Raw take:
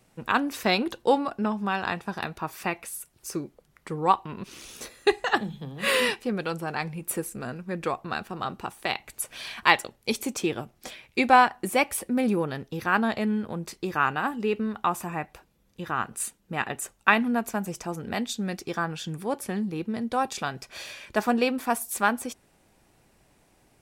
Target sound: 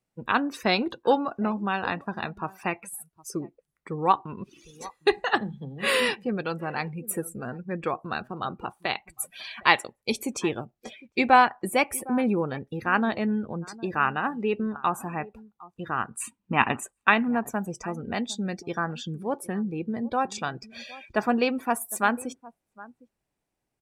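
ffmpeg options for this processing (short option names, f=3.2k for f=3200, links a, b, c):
-filter_complex "[0:a]asplit=3[a][b][c];[a]afade=t=out:st=16.2:d=0.02[d];[b]equalizer=f=100:t=o:w=0.67:g=10,equalizer=f=250:t=o:w=0.67:g=11,equalizer=f=1k:t=o:w=0.67:g=12,equalizer=f=2.5k:t=o:w=0.67:g=9,equalizer=f=10k:t=o:w=0.67:g=-6,afade=t=in:st=16.2:d=0.02,afade=t=out:st=16.82:d=0.02[e];[c]afade=t=in:st=16.82:d=0.02[f];[d][e][f]amix=inputs=3:normalize=0,asplit=2[g][h];[h]adelay=758,volume=-19dB,highshelf=f=4k:g=-17.1[i];[g][i]amix=inputs=2:normalize=0,afftdn=nr=21:nf=-41"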